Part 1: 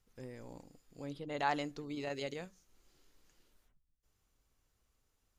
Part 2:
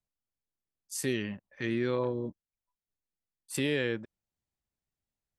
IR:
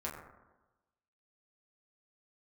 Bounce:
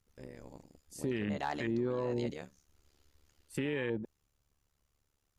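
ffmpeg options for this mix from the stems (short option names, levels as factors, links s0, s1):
-filter_complex "[0:a]asoftclip=type=hard:threshold=0.0596,tremolo=f=72:d=0.947,volume=0.596[s0];[1:a]afwtdn=0.0158,volume=0.668[s1];[s0][s1]amix=inputs=2:normalize=0,acontrast=90,alimiter=level_in=1.12:limit=0.0631:level=0:latency=1:release=47,volume=0.891"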